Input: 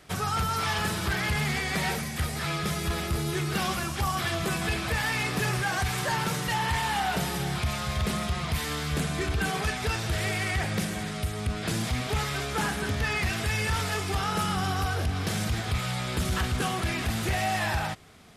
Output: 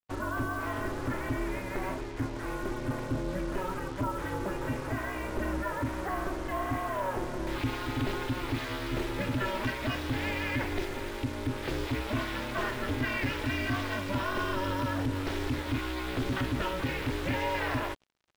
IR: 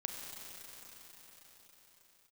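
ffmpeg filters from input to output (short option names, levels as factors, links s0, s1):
-af "asetnsamples=n=441:p=0,asendcmd='7.47 lowpass f 3400',lowpass=1300,acrusher=bits=6:mix=0:aa=0.5,aeval=exprs='val(0)*sin(2*PI*190*n/s)':c=same"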